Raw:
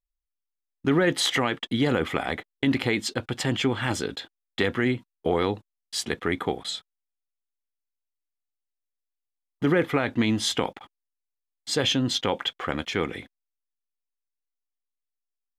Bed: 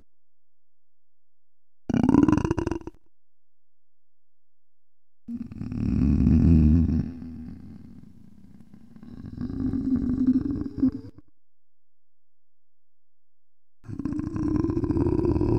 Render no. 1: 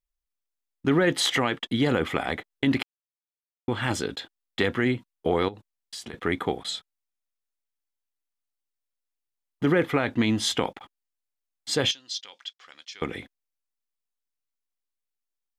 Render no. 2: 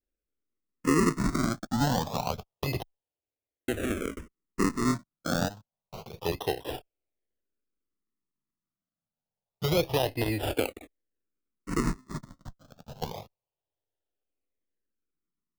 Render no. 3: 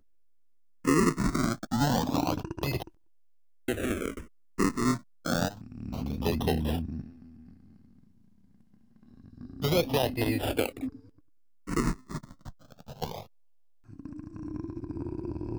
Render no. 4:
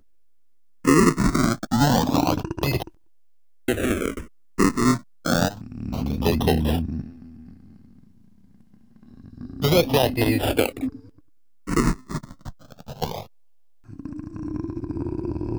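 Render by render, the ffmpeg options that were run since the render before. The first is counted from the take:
-filter_complex "[0:a]asettb=1/sr,asplit=3[s0][s1][s2];[s0]atrim=end=5.484[s3];[s1]atrim=start=5.48:end=6.14,asetpts=PTS-STARTPTS,afade=t=in:d=0.004:c=qsin,afade=t=out:st=0.656:d=0.004:c=qsin,acompressor=threshold=0.02:ratio=12:attack=3.2:release=140:knee=1:detection=peak[s4];[s2]atrim=start=6.136[s5];[s3][s4]acrossfade=d=0.004:c1=hsin:c2=qsin[s6];[s6][s5]acrossfade=d=0.004:c1=qsin:c2=hsin,asettb=1/sr,asplit=3[s7][s8][s9];[s7]atrim=end=11.914[s10];[s8]atrim=start=11.91:end=13.02,asetpts=PTS-STARTPTS,afade=t=in:d=0.004:c=qsin,afade=t=out:st=1.106:d=0.004:c=qsin,bandpass=f=5200:t=q:w=2.7[s11];[s9]atrim=start=13.016[s12];[s10][s11]acrossfade=d=0.004:c1=hsin:c2=qsin[s13];[s13][s12]acrossfade=d=0.004:c1=qsin:c2=hsin,asplit=3[s14][s15][s16];[s14]atrim=end=2.83,asetpts=PTS-STARTPTS,afade=t=out:st=2.826:d=0.004:c=hsin[s17];[s15]atrim=start=2.83:end=3.68,asetpts=PTS-STARTPTS,volume=0[s18];[s16]atrim=start=3.68,asetpts=PTS-STARTPTS,afade=t=in:d=0.004:c=hsin[s19];[s17][s18][s19]concat=n=3:v=0:a=1"
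-filter_complex "[0:a]acrusher=samples=38:mix=1:aa=0.000001:lfo=1:lforange=38:lforate=0.27,asplit=2[s0][s1];[s1]afreqshift=-0.28[s2];[s0][s2]amix=inputs=2:normalize=1"
-filter_complex "[1:a]volume=0.237[s0];[0:a][s0]amix=inputs=2:normalize=0"
-af "volume=2.37"

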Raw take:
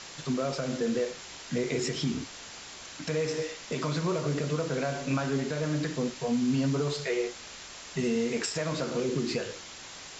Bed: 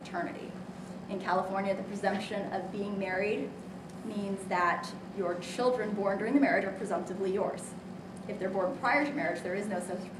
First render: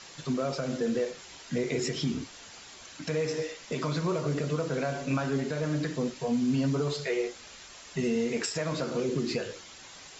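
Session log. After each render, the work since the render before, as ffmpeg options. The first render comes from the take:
-af "afftdn=nr=6:nf=-45"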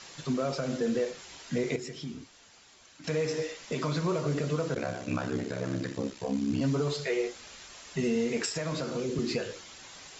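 -filter_complex "[0:a]asplit=3[s0][s1][s2];[s0]afade=t=out:st=4.74:d=0.02[s3];[s1]aeval=exprs='val(0)*sin(2*PI*33*n/s)':c=same,afade=t=in:st=4.74:d=0.02,afade=t=out:st=6.6:d=0.02[s4];[s2]afade=t=in:st=6.6:d=0.02[s5];[s3][s4][s5]amix=inputs=3:normalize=0,asettb=1/sr,asplit=3[s6][s7][s8];[s6]atrim=end=8.554[s9];[s7]atrim=start=8.55:end=9.19,asetpts=PTS-STARTPTS,afade=t=in:d=0.004:c=qsin,afade=t=out:st=0.636:d=0.004:c=qsin,acrossover=split=190|3000[s10][s11][s12];[s11]acompressor=threshold=0.0251:ratio=2:attack=3.2:release=140:knee=2.83:detection=peak[s13];[s10][s13][s12]amix=inputs=3:normalize=0[s14];[s8]atrim=start=9.186[s15];[s9][s14]acrossfade=d=0.004:c1=hsin:c2=qsin[s16];[s16][s15]acrossfade=d=0.004:c1=qsin:c2=hsin,asplit=3[s17][s18][s19];[s17]atrim=end=1.762[s20];[s18]atrim=start=1.758:end=3.042,asetpts=PTS-STARTPTS,volume=0.355[s21];[s19]atrim=start=3.038[s22];[s20][s21]acrossfade=d=0.004:c1=hsin:c2=hsin[s23];[s23][s22]acrossfade=d=0.004:c1=hsin:c2=hsin"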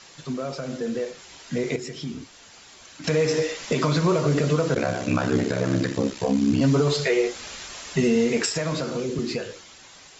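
-af "dynaudnorm=f=490:g=9:m=3.55,alimiter=limit=0.251:level=0:latency=1:release=239"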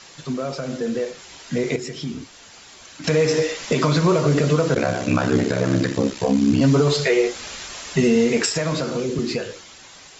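-af "volume=1.5"

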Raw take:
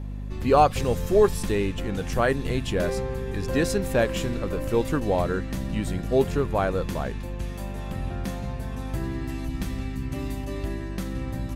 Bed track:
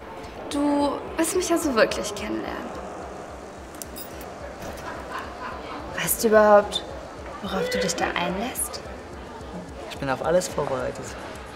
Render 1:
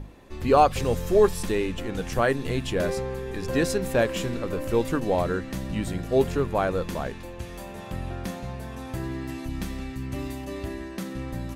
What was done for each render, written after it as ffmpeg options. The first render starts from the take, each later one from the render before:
-af "bandreject=f=50:t=h:w=6,bandreject=f=100:t=h:w=6,bandreject=f=150:t=h:w=6,bandreject=f=200:t=h:w=6,bandreject=f=250:t=h:w=6"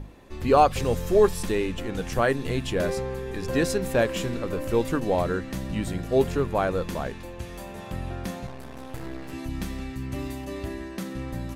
-filter_complex "[0:a]asettb=1/sr,asplit=3[s0][s1][s2];[s0]atrim=end=8.464[s3];[s1]atrim=start=8.46:end=9.33,asetpts=PTS-STARTPTS,afade=t=in:d=0.004:c=qsin,afade=t=out:st=0.866:d=0.004:c=qsin,aeval=exprs='max(val(0),0)':c=same[s4];[s2]atrim=start=9.326[s5];[s3][s4]acrossfade=d=0.004:c1=hsin:c2=qsin[s6];[s6][s5]acrossfade=d=0.004:c1=qsin:c2=hsin"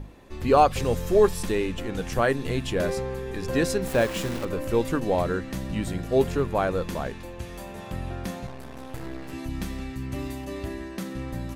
-filter_complex "[0:a]asettb=1/sr,asplit=3[s0][s1][s2];[s0]atrim=end=3.874[s3];[s1]atrim=start=3.87:end=4.45,asetpts=PTS-STARTPTS,afade=t=in:d=0.004:c=qsin,afade=t=out:st=0.576:d=0.004:c=qsin,aeval=exprs='val(0)*gte(abs(val(0)),0.0266)':c=same[s4];[s2]atrim=start=4.446[s5];[s3][s4]acrossfade=d=0.004:c1=hsin:c2=qsin[s6];[s6][s5]acrossfade=d=0.004:c1=qsin:c2=hsin"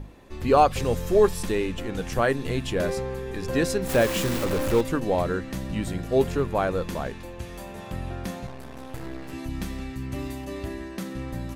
-filter_complex "[0:a]asettb=1/sr,asplit=3[s0][s1][s2];[s0]atrim=end=3.894[s3];[s1]atrim=start=3.89:end=4.81,asetpts=PTS-STARTPTS,afade=t=in:d=0.004:c=qsin,afade=t=out:st=0.916:d=0.004:c=qsin,aeval=exprs='val(0)+0.5*0.0531*sgn(val(0))':c=same[s4];[s2]atrim=start=4.806[s5];[s3][s4]acrossfade=d=0.004:c1=hsin:c2=qsin[s6];[s6][s5]acrossfade=d=0.004:c1=qsin:c2=hsin"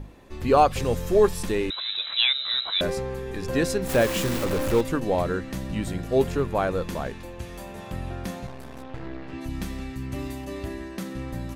-filter_complex "[0:a]asettb=1/sr,asplit=3[s0][s1][s2];[s0]atrim=end=1.704[s3];[s1]atrim=start=1.7:end=2.81,asetpts=PTS-STARTPTS,afade=t=in:d=0.004:c=qsin,afade=t=out:st=1.106:d=0.004:c=qsin,lowpass=f=3400:t=q:w=0.5098,lowpass=f=3400:t=q:w=0.6013,lowpass=f=3400:t=q:w=0.9,lowpass=f=3400:t=q:w=2.563,afreqshift=-4000[s4];[s2]atrim=start=2.806[s5];[s3][s4]acrossfade=d=0.004:c1=hsin:c2=qsin[s6];[s6][s5]acrossfade=d=0.004:c1=qsin:c2=hsin,asplit=3[s7][s8][s9];[s7]afade=t=out:st=8.82:d=0.02[s10];[s8]lowpass=3600,afade=t=in:st=8.82:d=0.02,afade=t=out:st=9.4:d=0.02[s11];[s9]afade=t=in:st=9.4:d=0.02[s12];[s10][s11][s12]amix=inputs=3:normalize=0"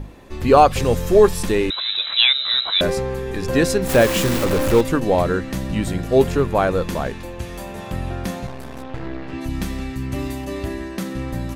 -af "volume=2.11,alimiter=limit=0.891:level=0:latency=1"

